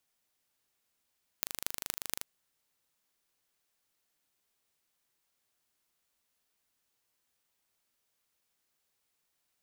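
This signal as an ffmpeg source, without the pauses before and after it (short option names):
-f lavfi -i "aevalsrc='0.668*eq(mod(n,1729),0)*(0.5+0.5*eq(mod(n,10374),0))':d=0.82:s=44100"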